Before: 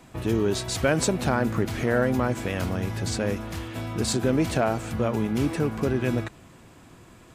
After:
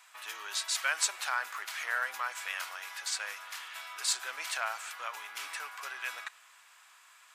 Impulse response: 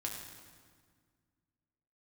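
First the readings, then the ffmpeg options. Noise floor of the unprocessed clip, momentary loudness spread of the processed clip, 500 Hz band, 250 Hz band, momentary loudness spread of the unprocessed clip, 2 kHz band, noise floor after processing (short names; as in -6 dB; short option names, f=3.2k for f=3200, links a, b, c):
-51 dBFS, 11 LU, -25.5 dB, under -40 dB, 6 LU, -1.0 dB, -60 dBFS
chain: -filter_complex "[0:a]highpass=f=1.1k:w=0.5412,highpass=f=1.1k:w=1.3066,asplit=2[a][b];[1:a]atrim=start_sample=2205[c];[b][c]afir=irnorm=-1:irlink=0,volume=-20dB[d];[a][d]amix=inputs=2:normalize=0,volume=-1.5dB"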